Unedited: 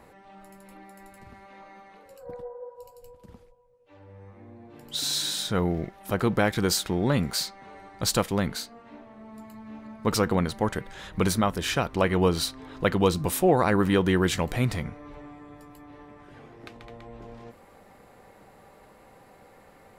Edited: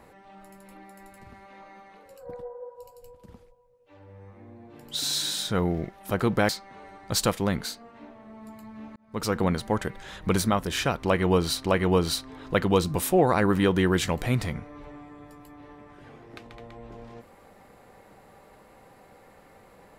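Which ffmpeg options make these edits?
ffmpeg -i in.wav -filter_complex "[0:a]asplit=4[link_01][link_02][link_03][link_04];[link_01]atrim=end=6.492[link_05];[link_02]atrim=start=7.398:end=9.87,asetpts=PTS-STARTPTS,afade=type=out:start_time=2.468:duration=0.004:curve=hsin[link_06];[link_03]atrim=start=9.87:end=12.552,asetpts=PTS-STARTPTS,afade=type=in:duration=0.48[link_07];[link_04]atrim=start=11.938[link_08];[link_06][link_07]concat=n=2:v=0:a=1[link_09];[link_05][link_09]acrossfade=duration=0.004:curve1=hsin:curve2=hsin[link_10];[link_10][link_08]acrossfade=duration=0.004:curve1=hsin:curve2=hsin" out.wav

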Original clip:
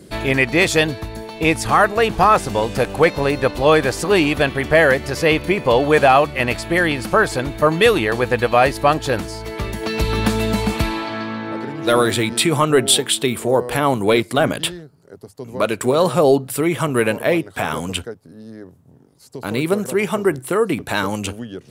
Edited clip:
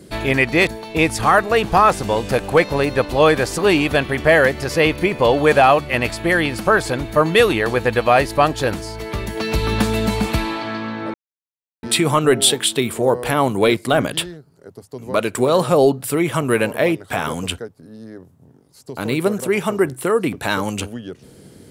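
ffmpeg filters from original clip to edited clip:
ffmpeg -i in.wav -filter_complex "[0:a]asplit=4[link_01][link_02][link_03][link_04];[link_01]atrim=end=0.672[link_05];[link_02]atrim=start=1.128:end=11.6,asetpts=PTS-STARTPTS,afade=type=out:start_time=10.468:duration=0.004:curve=hsin[link_06];[link_03]atrim=start=11.6:end=12.29,asetpts=PTS-STARTPTS,volume=0[link_07];[link_04]atrim=start=12.29,asetpts=PTS-STARTPTS,afade=type=in:duration=0.004:curve=hsin[link_08];[link_06][link_07][link_08]concat=n=3:v=0:a=1[link_09];[link_05][link_09]acrossfade=duration=0.004:curve1=hsin:curve2=hsin" out.wav

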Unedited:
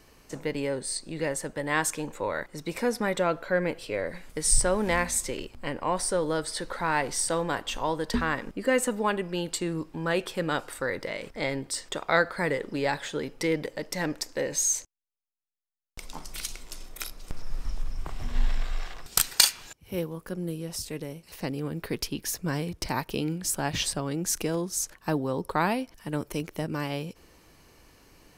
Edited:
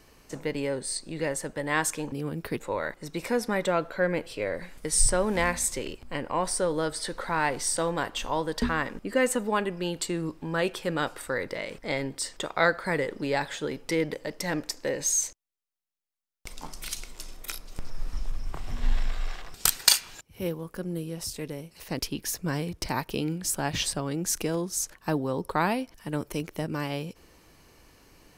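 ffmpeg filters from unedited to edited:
ffmpeg -i in.wav -filter_complex "[0:a]asplit=4[link_01][link_02][link_03][link_04];[link_01]atrim=end=2.122[link_05];[link_02]atrim=start=21.508:end=21.992[link_06];[link_03]atrim=start=2.118:end=21.512[link_07];[link_04]atrim=start=21.988[link_08];[link_05][link_06]acrossfade=duration=0.004:curve1=hsin:curve2=hsin[link_09];[link_09][link_07]acrossfade=duration=0.004:curve1=hsin:curve2=hsin[link_10];[link_10][link_08]acrossfade=duration=0.004:curve1=hsin:curve2=hsin" out.wav

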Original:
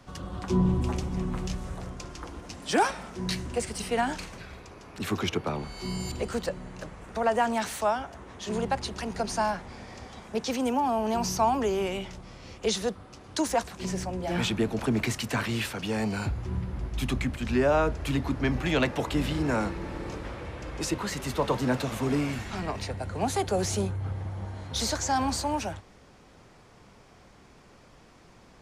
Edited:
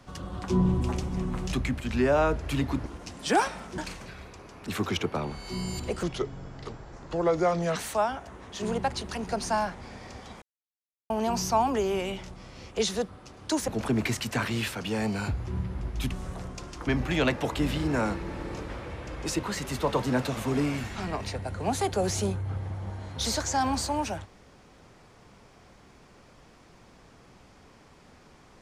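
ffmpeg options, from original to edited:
ffmpeg -i in.wav -filter_complex "[0:a]asplit=11[link_01][link_02][link_03][link_04][link_05][link_06][link_07][link_08][link_09][link_10][link_11];[link_01]atrim=end=1.532[link_12];[link_02]atrim=start=17.088:end=18.422[link_13];[link_03]atrim=start=2.288:end=3.212[link_14];[link_04]atrim=start=4.098:end=6.354[link_15];[link_05]atrim=start=6.35:end=7.63,asetpts=PTS-STARTPTS,asetrate=32634,aresample=44100,atrim=end_sample=76281,asetpts=PTS-STARTPTS[link_16];[link_06]atrim=start=7.626:end=10.29,asetpts=PTS-STARTPTS,afade=type=out:start_time=2.66:duration=0.004:curve=hsin[link_17];[link_07]atrim=start=10.29:end=10.97,asetpts=PTS-STARTPTS,volume=0[link_18];[link_08]atrim=start=10.97:end=13.552,asetpts=PTS-STARTPTS,afade=type=in:duration=0.004:curve=hsin[link_19];[link_09]atrim=start=14.658:end=17.092[link_20];[link_10]atrim=start=1.528:end=2.292[link_21];[link_11]atrim=start=18.418[link_22];[link_12][link_13]acrossfade=duration=0.004:curve1=hsin:curve2=hsin[link_23];[link_23][link_14]acrossfade=duration=0.004:curve1=hsin:curve2=hsin[link_24];[link_24][link_15]acrossfade=duration=0.004:curve1=hsin:curve2=hsin[link_25];[link_25][link_16]acrossfade=duration=0.004:curve1=hsin:curve2=hsin[link_26];[link_17][link_18][link_19]concat=n=3:v=0:a=1[link_27];[link_26][link_27]acrossfade=duration=0.004:curve1=hsin:curve2=hsin[link_28];[link_28][link_20]acrossfade=duration=0.004:curve1=hsin:curve2=hsin[link_29];[link_29][link_21]acrossfade=duration=0.004:curve1=hsin:curve2=hsin[link_30];[link_30][link_22]acrossfade=duration=0.004:curve1=hsin:curve2=hsin" out.wav

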